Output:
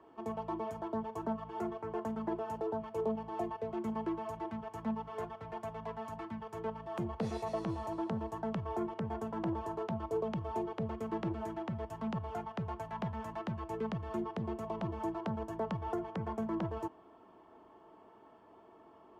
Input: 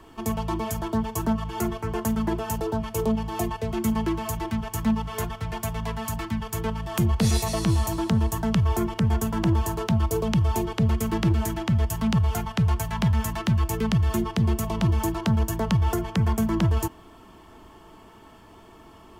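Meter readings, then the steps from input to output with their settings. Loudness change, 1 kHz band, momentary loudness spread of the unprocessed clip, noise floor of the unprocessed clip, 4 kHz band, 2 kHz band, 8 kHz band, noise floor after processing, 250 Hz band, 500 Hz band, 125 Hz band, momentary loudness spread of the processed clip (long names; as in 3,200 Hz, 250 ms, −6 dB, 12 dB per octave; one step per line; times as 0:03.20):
−13.5 dB, −8.0 dB, 6 LU, −49 dBFS, −21.0 dB, −15.0 dB, below −25 dB, −60 dBFS, −13.0 dB, −7.0 dB, −19.5 dB, 5 LU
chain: resonant band-pass 590 Hz, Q 1
level −5.5 dB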